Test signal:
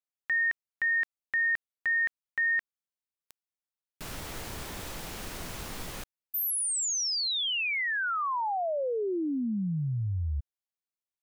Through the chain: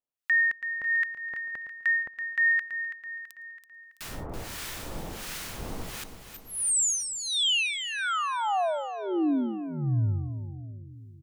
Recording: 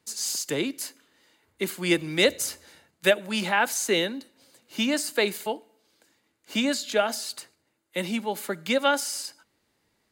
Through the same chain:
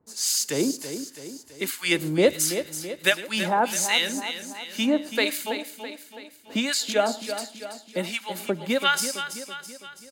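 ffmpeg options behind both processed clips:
-filter_complex "[0:a]asplit=2[s0][s1];[s1]aecho=0:1:110:0.0891[s2];[s0][s2]amix=inputs=2:normalize=0,acrossover=split=1100[s3][s4];[s3]aeval=exprs='val(0)*(1-1/2+1/2*cos(2*PI*1.4*n/s))':c=same[s5];[s4]aeval=exprs='val(0)*(1-1/2-1/2*cos(2*PI*1.4*n/s))':c=same[s6];[s5][s6]amix=inputs=2:normalize=0,asplit=2[s7][s8];[s8]aecho=0:1:330|660|990|1320|1650|1980:0.316|0.164|0.0855|0.0445|0.0231|0.012[s9];[s7][s9]amix=inputs=2:normalize=0,volume=2"

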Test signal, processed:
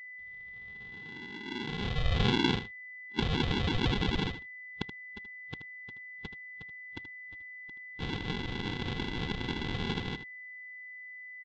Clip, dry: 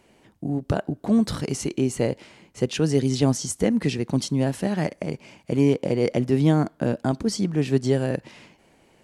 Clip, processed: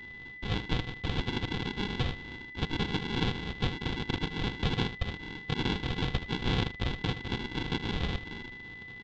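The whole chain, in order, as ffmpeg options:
-filter_complex "[0:a]highpass=f=780:t=q:w=4.9,acompressor=threshold=0.0316:ratio=6,afftfilt=real='re*(1-between(b*sr/4096,1100,2200))':imag='im*(1-between(b*sr/4096,1100,2200))':win_size=4096:overlap=0.75,afftfilt=real='hypot(re,im)*cos(2*PI*random(0))':imag='hypot(re,im)*sin(2*PI*random(1))':win_size=512:overlap=0.75,acontrast=84,aresample=16000,acrusher=samples=26:mix=1:aa=0.000001,aresample=44100,aeval=exprs='val(0)+0.00316*sin(2*PI*2000*n/s)':c=same,lowpass=f=3500:t=q:w=4.5,asplit=2[s0][s1];[s1]aecho=0:1:78:0.251[s2];[s0][s2]amix=inputs=2:normalize=0,volume=1.19"

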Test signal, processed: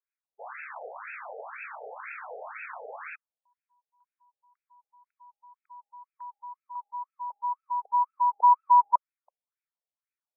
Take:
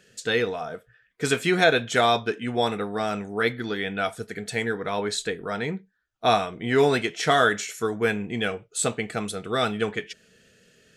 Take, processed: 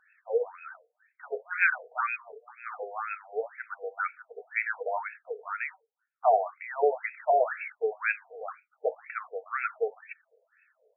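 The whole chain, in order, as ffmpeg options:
-af "aexciter=amount=2.8:drive=5.1:freq=2700,afftfilt=real='re*between(b*sr/1024,570*pow(1900/570,0.5+0.5*sin(2*PI*2*pts/sr))/1.41,570*pow(1900/570,0.5+0.5*sin(2*PI*2*pts/sr))*1.41)':imag='im*between(b*sr/1024,570*pow(1900/570,0.5+0.5*sin(2*PI*2*pts/sr))/1.41,570*pow(1900/570,0.5+0.5*sin(2*PI*2*pts/sr))*1.41)':win_size=1024:overlap=0.75"

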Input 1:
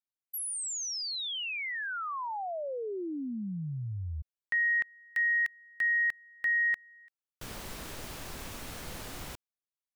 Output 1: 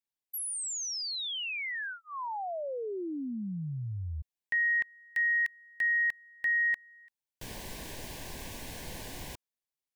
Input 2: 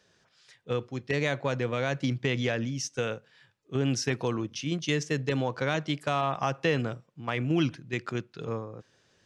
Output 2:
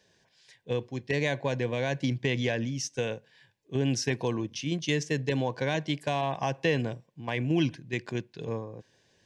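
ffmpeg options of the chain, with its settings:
-af "asuperstop=centerf=1300:order=4:qfactor=3.2"

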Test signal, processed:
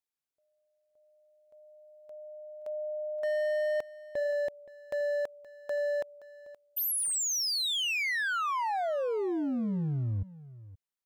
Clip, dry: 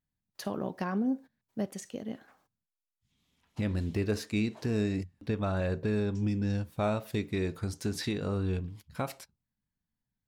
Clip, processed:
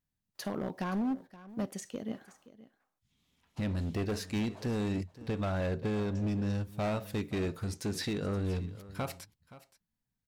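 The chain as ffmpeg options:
-af "volume=26.6,asoftclip=hard,volume=0.0376,aecho=1:1:523:0.133"

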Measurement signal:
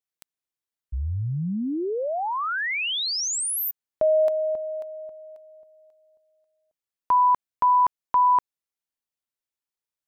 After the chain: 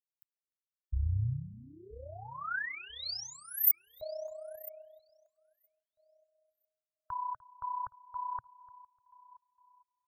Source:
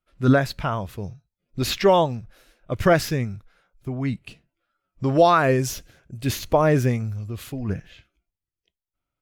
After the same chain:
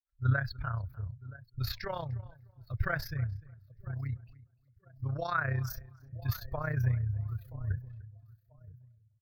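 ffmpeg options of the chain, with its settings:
-filter_complex "[0:a]asplit=2[s0][s1];[s1]aecho=0:1:980|1960|2940:0.119|0.0416|0.0146[s2];[s0][s2]amix=inputs=2:normalize=0,tremolo=f=31:d=0.71,afftdn=nr=22:nf=-39,firequalizer=gain_entry='entry(120,0);entry(190,-24);entry(290,-25);entry(570,-18);entry(880,-18);entry(1500,-3);entry(2900,-22);entry(4400,-6);entry(8500,-27);entry(15000,14)':delay=0.05:min_phase=1,asplit=2[s3][s4];[s4]adelay=299,lowpass=f=1900:p=1,volume=0.1,asplit=2[s5][s6];[s6]adelay=299,lowpass=f=1900:p=1,volume=0.19[s7];[s5][s7]amix=inputs=2:normalize=0[s8];[s3][s8]amix=inputs=2:normalize=0"

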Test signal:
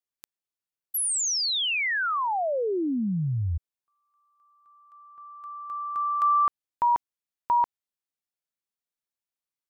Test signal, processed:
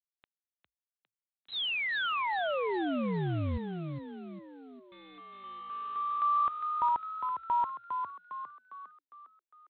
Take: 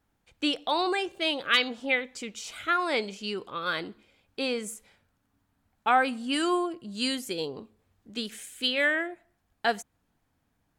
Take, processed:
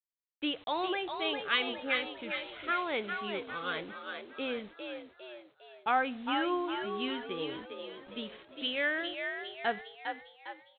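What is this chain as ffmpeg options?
-filter_complex "[0:a]aresample=8000,acrusher=bits=7:mix=0:aa=0.000001,aresample=44100,asplit=7[s0][s1][s2][s3][s4][s5][s6];[s1]adelay=405,afreqshift=55,volume=0.501[s7];[s2]adelay=810,afreqshift=110,volume=0.245[s8];[s3]adelay=1215,afreqshift=165,volume=0.12[s9];[s4]adelay=1620,afreqshift=220,volume=0.0589[s10];[s5]adelay=2025,afreqshift=275,volume=0.0288[s11];[s6]adelay=2430,afreqshift=330,volume=0.0141[s12];[s0][s7][s8][s9][s10][s11][s12]amix=inputs=7:normalize=0,volume=0.501"

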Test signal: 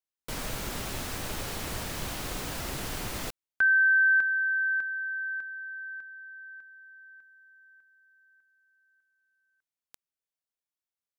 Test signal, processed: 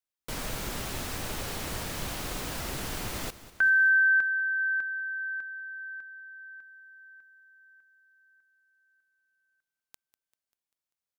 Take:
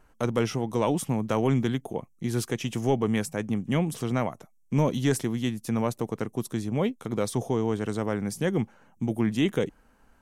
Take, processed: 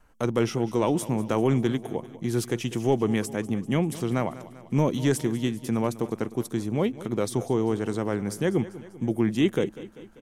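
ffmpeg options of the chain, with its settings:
-filter_complex "[0:a]adynamicequalizer=threshold=0.00891:dfrequency=350:dqfactor=3.8:tfrequency=350:tqfactor=3.8:attack=5:release=100:ratio=0.375:range=2.5:mode=boostabove:tftype=bell,asplit=2[s0][s1];[s1]aecho=0:1:196|392|588|784|980:0.15|0.0838|0.0469|0.0263|0.0147[s2];[s0][s2]amix=inputs=2:normalize=0"

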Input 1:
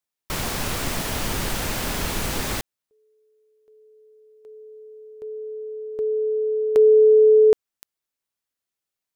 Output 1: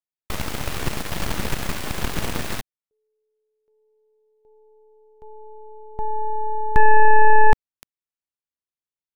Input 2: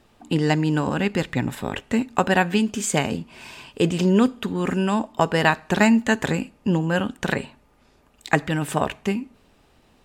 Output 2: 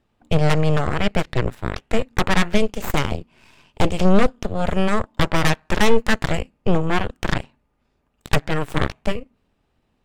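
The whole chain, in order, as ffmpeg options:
-af "aeval=exprs='0.75*(cos(1*acos(clip(val(0)/0.75,-1,1)))-cos(1*PI/2))+0.211*(cos(3*acos(clip(val(0)/0.75,-1,1)))-cos(3*PI/2))+0.0531*(cos(5*acos(clip(val(0)/0.75,-1,1)))-cos(5*PI/2))+0.00422*(cos(7*acos(clip(val(0)/0.75,-1,1)))-cos(7*PI/2))+0.376*(cos(8*acos(clip(val(0)/0.75,-1,1)))-cos(8*PI/2))':c=same,bass=f=250:g=4,treble=f=4000:g=-5,volume=0.531"

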